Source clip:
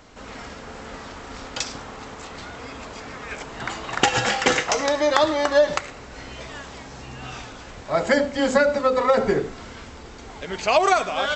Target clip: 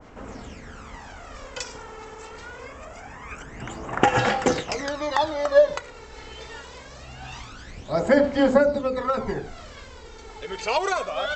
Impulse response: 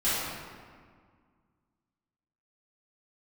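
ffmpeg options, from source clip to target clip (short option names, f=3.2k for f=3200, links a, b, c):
-af "asetnsamples=n=441:p=0,asendcmd='2.67 equalizer g -14.5;4.19 equalizer g 2',equalizer=f=4.1k:w=2.1:g=-6,aphaser=in_gain=1:out_gain=1:delay=2.3:decay=0.61:speed=0.24:type=sinusoidal,adynamicequalizer=threshold=0.0282:dfrequency=1500:dqfactor=0.7:tfrequency=1500:tqfactor=0.7:attack=5:release=100:ratio=0.375:range=3:mode=cutabove:tftype=highshelf,volume=-5dB"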